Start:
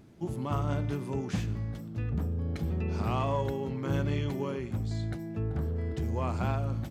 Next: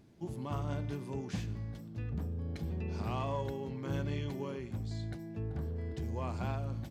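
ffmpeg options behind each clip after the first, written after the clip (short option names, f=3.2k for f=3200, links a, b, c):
-af "equalizer=f=4.6k:w=1.5:g=3,bandreject=f=1.3k:w=13,volume=-6dB"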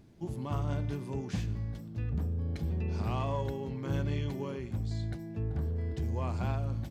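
-af "lowshelf=f=75:g=8.5,volume=1.5dB"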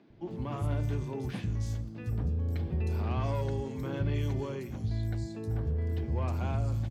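-filter_complex "[0:a]acrossover=split=480|3100[a][b][c];[b]asoftclip=type=tanh:threshold=-38.5dB[d];[a][d][c]amix=inputs=3:normalize=0,acrossover=split=190|4400[e][f][g];[e]adelay=100[h];[g]adelay=310[i];[h][f][i]amix=inputs=3:normalize=0,volume=2.5dB"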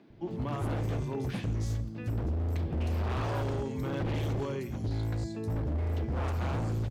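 -af "aeval=exprs='0.0376*(abs(mod(val(0)/0.0376+3,4)-2)-1)':c=same,volume=2.5dB"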